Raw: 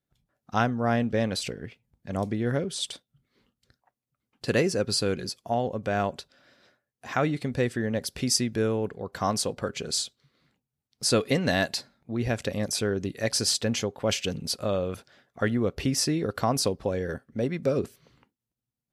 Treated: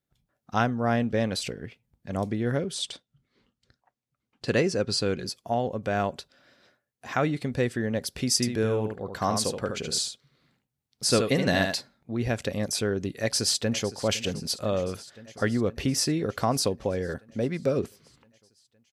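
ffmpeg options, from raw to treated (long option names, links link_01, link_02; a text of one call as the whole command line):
ffmpeg -i in.wav -filter_complex "[0:a]asettb=1/sr,asplit=3[link_01][link_02][link_03];[link_01]atrim=end=2.824[link_04];[link_02]atrim=start=2.82:end=5.26,asetpts=PTS-STARTPTS,afade=type=in:duration=0.004:curve=qsin,afade=type=out:start_time=2.436:duration=0.004:curve=qsin,lowpass=7700[link_05];[link_03]atrim=start=5.256[link_06];[link_04][link_05]acrossfade=duration=0.004:curve1=hsin:curve2=qsin[link_07];[link_07][link_06]acrossfade=duration=0.004:curve1=qsin:curve2=hsin,asettb=1/sr,asplit=3[link_08][link_09][link_10];[link_08]atrim=end=8.354[link_11];[link_09]atrim=start=8.35:end=11.77,asetpts=PTS-STARTPTS,afade=type=in:duration=0.004:curve=qsin,afade=type=out:start_time=3.416:duration=0.004:curve=qsin,aecho=1:1:74:0.501,atrim=end_sample=150822[link_12];[link_10]atrim=start=11.766[link_13];[link_11][link_12]acrossfade=duration=0.004:curve1=hsin:curve2=qsin[link_14];[link_14][link_13]acrossfade=duration=0.004:curve1=qsin:curve2=hsin,asplit=2[link_15][link_16];[link_16]afade=type=in:start_time=13.2:duration=0.01,afade=type=out:start_time=13.92:duration=0.01,aecho=0:1:510|1020|1530|2040|2550|3060|3570|4080|4590|5100:0.158489|0.118867|0.0891502|0.0668627|0.050147|0.0376103|0.0282077|0.0211558|0.0158668|0.0119001[link_17];[link_15][link_17]amix=inputs=2:normalize=0" out.wav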